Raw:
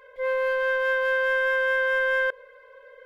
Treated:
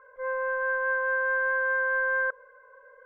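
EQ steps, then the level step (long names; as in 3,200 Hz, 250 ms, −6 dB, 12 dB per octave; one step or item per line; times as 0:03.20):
transistor ladder low-pass 1,400 Hz, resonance 80%
+5.0 dB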